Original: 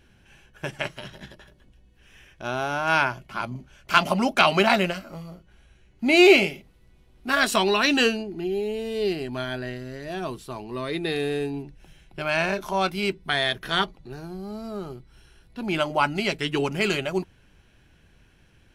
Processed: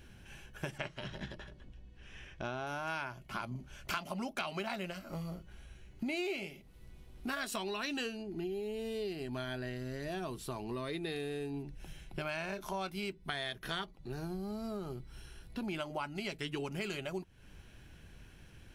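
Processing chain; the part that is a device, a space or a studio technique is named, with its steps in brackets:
0:00.78–0:02.67: high-frequency loss of the air 85 metres
ASMR close-microphone chain (low-shelf EQ 190 Hz +3.5 dB; downward compressor 6 to 1, threshold −37 dBFS, peak gain reduction 25 dB; high-shelf EQ 7,400 Hz +5.5 dB)

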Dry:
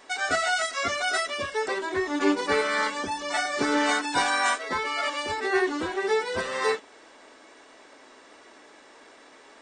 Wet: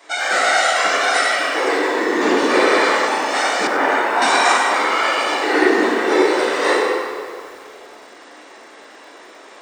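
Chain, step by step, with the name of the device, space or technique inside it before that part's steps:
whispering ghost (random phases in short frames; high-pass filter 260 Hz 24 dB per octave; convolution reverb RT60 2.1 s, pre-delay 7 ms, DRR −6 dB)
0:03.67–0:04.22: three-way crossover with the lows and the highs turned down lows −12 dB, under 420 Hz, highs −16 dB, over 2,300 Hz
feedback echo at a low word length 96 ms, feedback 55%, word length 7 bits, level −12 dB
level +3 dB

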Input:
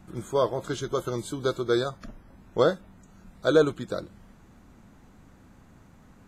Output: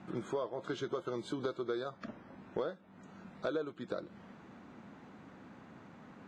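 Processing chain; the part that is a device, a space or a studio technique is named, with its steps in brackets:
AM radio (band-pass filter 190–3,500 Hz; downward compressor 8 to 1, threshold −37 dBFS, peak gain reduction 21.5 dB; soft clipping −25 dBFS, distortion −25 dB)
level +3.5 dB

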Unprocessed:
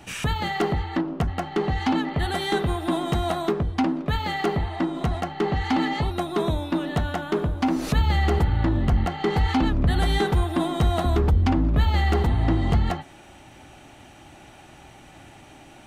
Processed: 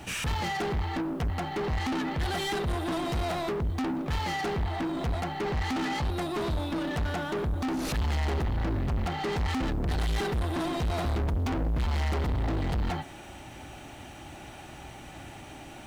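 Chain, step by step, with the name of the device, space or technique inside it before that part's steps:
open-reel tape (soft clipping −30.5 dBFS, distortion −5 dB; parametric band 62 Hz +3.5 dB 0.94 octaves; white noise bed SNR 39 dB)
level +2.5 dB

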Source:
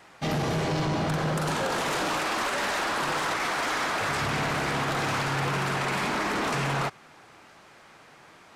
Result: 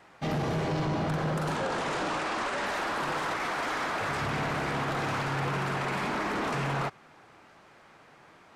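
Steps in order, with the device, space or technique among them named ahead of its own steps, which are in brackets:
behind a face mask (high-shelf EQ 3,100 Hz −7.5 dB)
0:01.56–0:02.66: low-pass filter 9,700 Hz 24 dB per octave
level −2 dB

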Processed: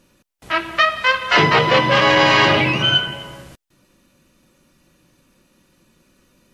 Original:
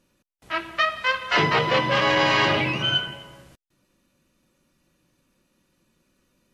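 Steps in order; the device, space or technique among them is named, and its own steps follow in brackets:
parallel compression (in parallel at −4 dB: downward compressor, threshold −33 dBFS, peak gain reduction 16 dB)
on the sum: level +5.5 dB

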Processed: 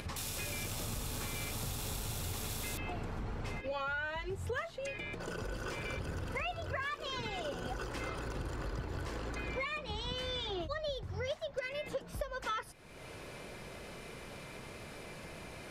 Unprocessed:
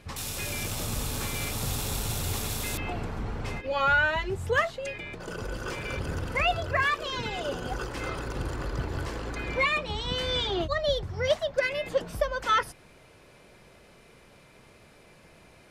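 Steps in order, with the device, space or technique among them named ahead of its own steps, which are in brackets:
upward and downward compression (upward compression, threshold −33 dBFS; downward compressor 5 to 1, threshold −32 dBFS, peak gain reduction 12 dB)
level −3.5 dB

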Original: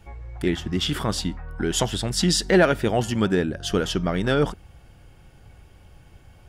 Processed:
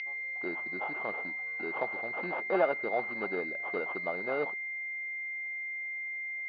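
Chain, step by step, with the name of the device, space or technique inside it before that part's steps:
toy sound module (linearly interpolated sample-rate reduction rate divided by 4×; switching amplifier with a slow clock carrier 2,100 Hz; loudspeaker in its box 780–4,900 Hz, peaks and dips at 1,000 Hz −5 dB, 2,000 Hz −8 dB, 2,800 Hz +6 dB, 4,600 Hz +5 dB)

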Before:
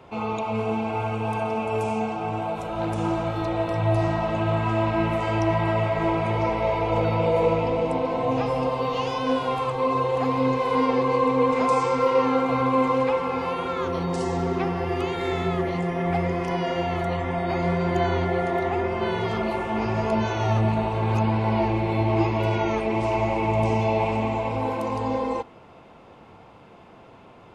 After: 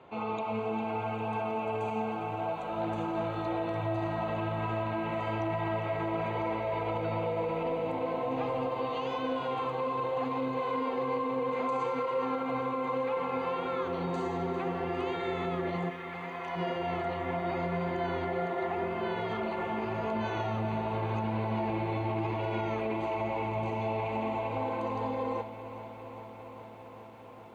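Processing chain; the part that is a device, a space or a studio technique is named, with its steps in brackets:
PA system with an anti-feedback notch (high-pass filter 190 Hz 6 dB per octave; Butterworth band-reject 5,300 Hz, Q 4.5; brickwall limiter −19.5 dBFS, peak gain reduction 9 dB)
0:15.89–0:16.55: high-pass filter 1,300 Hz → 600 Hz 24 dB per octave
high-frequency loss of the air 120 metres
feedback echo at a low word length 402 ms, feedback 80%, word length 10 bits, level −13.5 dB
level −4.5 dB

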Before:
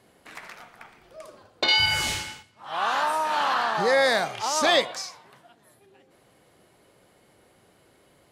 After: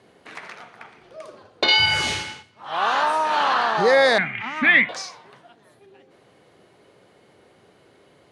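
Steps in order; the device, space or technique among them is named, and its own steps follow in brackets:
car door speaker (loudspeaker in its box 81–8,800 Hz, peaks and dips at 420 Hz +4 dB, 5,200 Hz −3 dB, 7,600 Hz −8 dB)
0:04.18–0:04.89: drawn EQ curve 100 Hz 0 dB, 240 Hz +8 dB, 460 Hz −20 dB, 1,200 Hz −7 dB, 2,100 Hz +13 dB, 4,900 Hz −27 dB
level +4 dB

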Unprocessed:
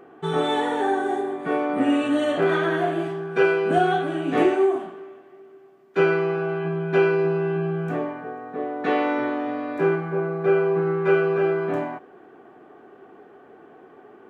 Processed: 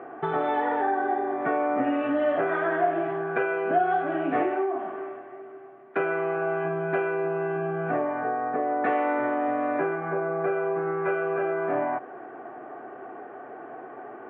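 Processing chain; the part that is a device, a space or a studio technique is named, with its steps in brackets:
high-pass filter 320 Hz 6 dB per octave
bass amplifier (downward compressor 4 to 1, threshold −33 dBFS, peak gain reduction 14.5 dB; loudspeaker in its box 82–2,200 Hz, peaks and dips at 130 Hz +8 dB, 180 Hz −8 dB, 420 Hz −4 dB, 670 Hz +6 dB)
level +8.5 dB

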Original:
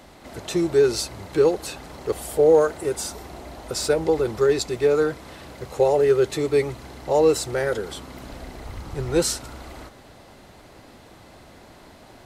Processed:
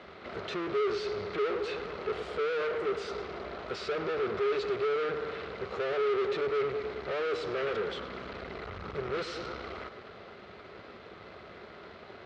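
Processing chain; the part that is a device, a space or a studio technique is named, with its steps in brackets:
analogue delay pedal into a guitar amplifier (bucket-brigade delay 105 ms, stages 4,096, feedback 59%, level −15.5 dB; tube saturation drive 36 dB, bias 0.75; loudspeaker in its box 92–4,100 Hz, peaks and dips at 130 Hz −8 dB, 280 Hz −9 dB, 410 Hz +8 dB, 870 Hz −6 dB, 1,300 Hz +8 dB, 2,200 Hz +3 dB)
level +3 dB

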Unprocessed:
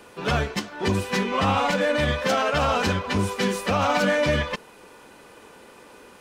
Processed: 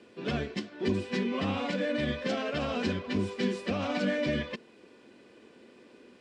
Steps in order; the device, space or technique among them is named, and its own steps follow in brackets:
car door speaker (loudspeaker in its box 85–7,100 Hz, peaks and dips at 240 Hz +9 dB, 350 Hz +7 dB, 880 Hz −10 dB, 1,300 Hz −8 dB, 6,300 Hz −7 dB)
level −8.5 dB

